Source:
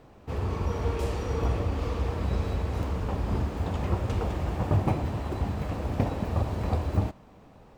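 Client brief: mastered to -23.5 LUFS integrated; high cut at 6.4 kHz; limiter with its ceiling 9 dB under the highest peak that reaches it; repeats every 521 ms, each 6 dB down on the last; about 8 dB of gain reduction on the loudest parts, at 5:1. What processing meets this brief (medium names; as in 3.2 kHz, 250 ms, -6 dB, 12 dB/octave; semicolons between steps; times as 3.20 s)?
low-pass 6.4 kHz; compression 5:1, threshold -29 dBFS; peak limiter -27.5 dBFS; feedback delay 521 ms, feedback 50%, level -6 dB; trim +12.5 dB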